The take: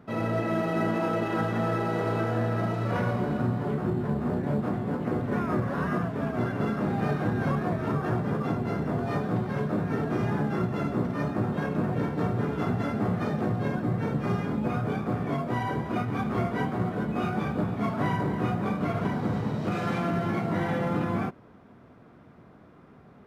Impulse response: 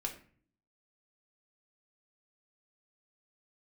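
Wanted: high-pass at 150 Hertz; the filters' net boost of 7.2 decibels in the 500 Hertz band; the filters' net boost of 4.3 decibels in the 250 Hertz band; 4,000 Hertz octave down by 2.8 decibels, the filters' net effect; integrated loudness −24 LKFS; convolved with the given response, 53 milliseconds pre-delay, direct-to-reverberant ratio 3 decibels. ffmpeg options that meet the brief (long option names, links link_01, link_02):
-filter_complex "[0:a]highpass=150,equalizer=frequency=250:width_type=o:gain=4.5,equalizer=frequency=500:width_type=o:gain=8,equalizer=frequency=4000:width_type=o:gain=-4,asplit=2[link_01][link_02];[1:a]atrim=start_sample=2205,adelay=53[link_03];[link_02][link_03]afir=irnorm=-1:irlink=0,volume=-3.5dB[link_04];[link_01][link_04]amix=inputs=2:normalize=0,volume=-1.5dB"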